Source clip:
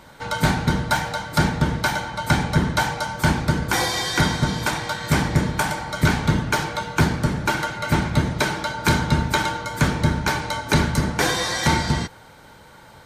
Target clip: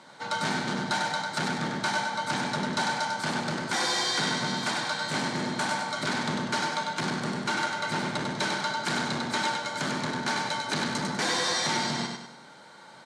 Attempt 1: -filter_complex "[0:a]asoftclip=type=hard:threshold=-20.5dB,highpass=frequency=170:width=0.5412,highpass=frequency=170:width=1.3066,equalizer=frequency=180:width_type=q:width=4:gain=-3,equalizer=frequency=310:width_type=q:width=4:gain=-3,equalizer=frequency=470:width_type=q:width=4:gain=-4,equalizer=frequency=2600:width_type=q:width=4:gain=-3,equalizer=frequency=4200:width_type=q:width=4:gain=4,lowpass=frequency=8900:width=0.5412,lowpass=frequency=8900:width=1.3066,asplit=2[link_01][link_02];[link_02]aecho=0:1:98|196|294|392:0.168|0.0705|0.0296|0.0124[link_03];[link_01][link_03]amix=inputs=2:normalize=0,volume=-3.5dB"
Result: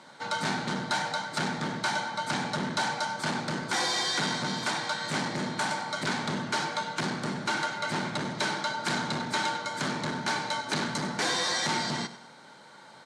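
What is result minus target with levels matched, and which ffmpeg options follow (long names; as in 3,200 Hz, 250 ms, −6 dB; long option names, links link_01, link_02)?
echo-to-direct −11 dB
-filter_complex "[0:a]asoftclip=type=hard:threshold=-20.5dB,highpass=frequency=170:width=0.5412,highpass=frequency=170:width=1.3066,equalizer=frequency=180:width_type=q:width=4:gain=-3,equalizer=frequency=310:width_type=q:width=4:gain=-3,equalizer=frequency=470:width_type=q:width=4:gain=-4,equalizer=frequency=2600:width_type=q:width=4:gain=-3,equalizer=frequency=4200:width_type=q:width=4:gain=4,lowpass=frequency=8900:width=0.5412,lowpass=frequency=8900:width=1.3066,asplit=2[link_01][link_02];[link_02]aecho=0:1:98|196|294|392|490:0.596|0.25|0.105|0.0441|0.0185[link_03];[link_01][link_03]amix=inputs=2:normalize=0,volume=-3.5dB"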